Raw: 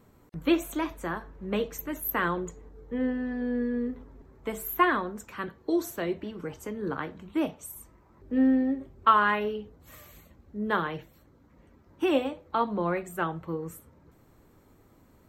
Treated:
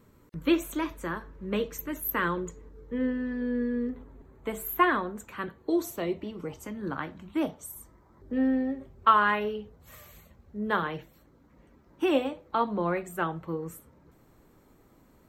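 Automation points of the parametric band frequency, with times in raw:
parametric band −12 dB 0.23 octaves
740 Hz
from 0:03.89 5,300 Hz
from 0:05.82 1,600 Hz
from 0:06.63 440 Hz
from 0:07.43 2,600 Hz
from 0:08.33 300 Hz
from 0:10.83 92 Hz

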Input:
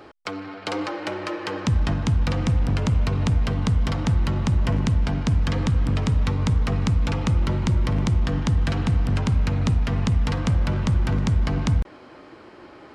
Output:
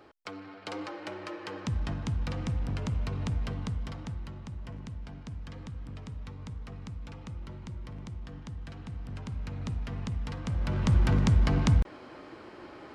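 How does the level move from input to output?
0:03.49 −10.5 dB
0:04.42 −20 dB
0:08.78 −20 dB
0:09.78 −13 dB
0:10.42 −13 dB
0:10.95 −2 dB

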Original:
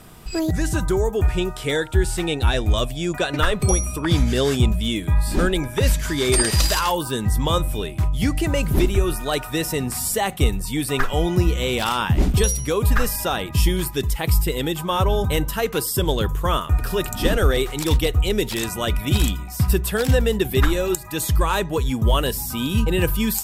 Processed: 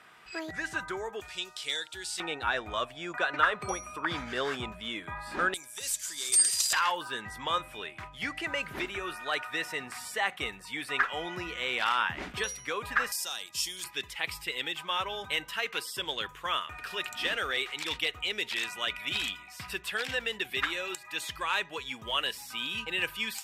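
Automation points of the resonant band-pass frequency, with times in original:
resonant band-pass, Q 1.5
1,800 Hz
from 0:01.20 4,500 Hz
from 0:02.20 1,400 Hz
from 0:05.54 7,800 Hz
from 0:06.73 1,800 Hz
from 0:13.12 6,000 Hz
from 0:13.84 2,400 Hz

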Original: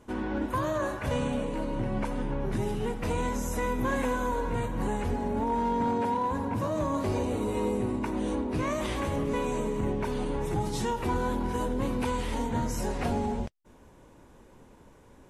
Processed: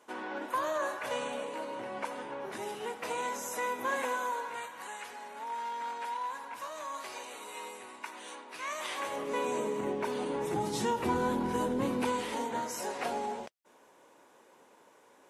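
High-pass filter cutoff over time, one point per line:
0:04.04 580 Hz
0:04.85 1,300 Hz
0:08.64 1,300 Hz
0:09.55 320 Hz
0:10.14 320 Hz
0:11.10 150 Hz
0:11.76 150 Hz
0:12.69 500 Hz

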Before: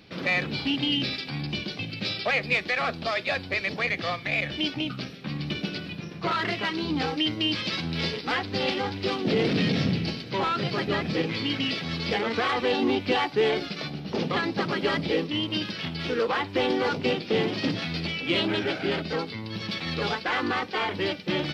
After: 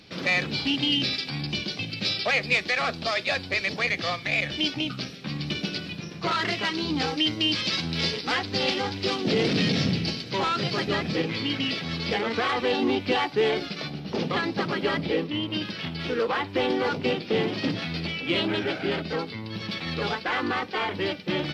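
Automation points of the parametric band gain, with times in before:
parametric band 6,800 Hz 1.5 octaves
0:10.84 +8 dB
0:11.29 +1 dB
0:14.53 +1 dB
0:15.42 −8.5 dB
0:15.71 −2 dB

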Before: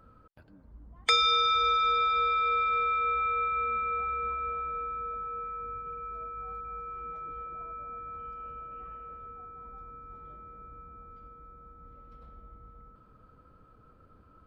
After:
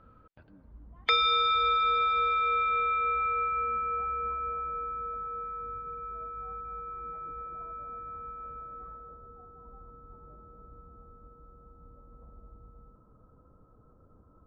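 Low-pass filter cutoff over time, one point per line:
low-pass filter 24 dB per octave
0:02.83 4,000 Hz
0:03.78 2,000 Hz
0:08.54 2,000 Hz
0:09.21 1,100 Hz

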